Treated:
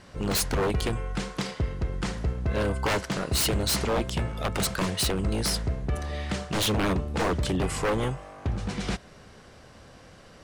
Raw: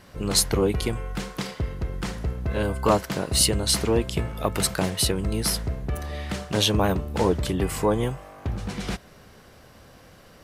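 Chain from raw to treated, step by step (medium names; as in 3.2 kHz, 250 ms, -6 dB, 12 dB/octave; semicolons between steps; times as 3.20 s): low-pass 9.6 kHz 24 dB/octave; wavefolder -19.5 dBFS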